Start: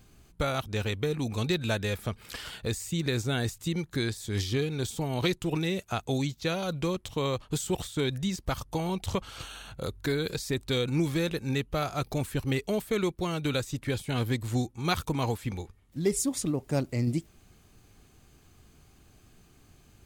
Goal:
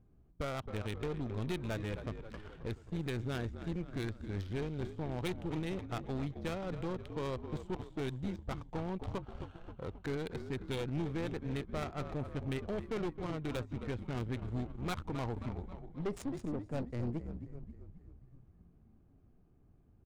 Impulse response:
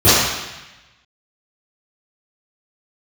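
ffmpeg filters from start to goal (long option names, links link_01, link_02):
-filter_complex "[0:a]highshelf=frequency=9400:gain=8.5,asplit=9[link_01][link_02][link_03][link_04][link_05][link_06][link_07][link_08][link_09];[link_02]adelay=266,afreqshift=-49,volume=-9.5dB[link_10];[link_03]adelay=532,afreqshift=-98,volume=-13.7dB[link_11];[link_04]adelay=798,afreqshift=-147,volume=-17.8dB[link_12];[link_05]adelay=1064,afreqshift=-196,volume=-22dB[link_13];[link_06]adelay=1330,afreqshift=-245,volume=-26.1dB[link_14];[link_07]adelay=1596,afreqshift=-294,volume=-30.3dB[link_15];[link_08]adelay=1862,afreqshift=-343,volume=-34.4dB[link_16];[link_09]adelay=2128,afreqshift=-392,volume=-38.6dB[link_17];[link_01][link_10][link_11][link_12][link_13][link_14][link_15][link_16][link_17]amix=inputs=9:normalize=0,adynamicsmooth=sensitivity=3:basefreq=750,aeval=exprs='(tanh(20*val(0)+0.5)-tanh(0.5))/20':channel_layout=same,volume=-5dB"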